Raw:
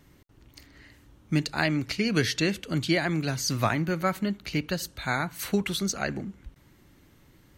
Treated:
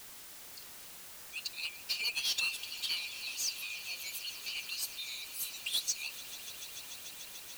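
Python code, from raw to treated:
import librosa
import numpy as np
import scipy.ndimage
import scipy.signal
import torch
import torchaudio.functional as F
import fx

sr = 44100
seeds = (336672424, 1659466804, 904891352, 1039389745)

p1 = fx.bin_expand(x, sr, power=1.5)
p2 = scipy.signal.sosfilt(scipy.signal.cheby1(10, 1.0, 2400.0, 'highpass', fs=sr, output='sos'), p1)
p3 = fx.level_steps(p2, sr, step_db=19)
p4 = p2 + (p3 * librosa.db_to_amplitude(1.0))
p5 = fx.tremolo_shape(p4, sr, shape='saw_down', hz=0.53, depth_pct=70)
p6 = fx.dmg_noise_colour(p5, sr, seeds[0], colour='white', level_db=-68.0)
p7 = fx.power_curve(p6, sr, exponent=0.5)
p8 = fx.echo_swell(p7, sr, ms=146, loudest=5, wet_db=-18)
y = p8 * librosa.db_to_amplitude(-8.0)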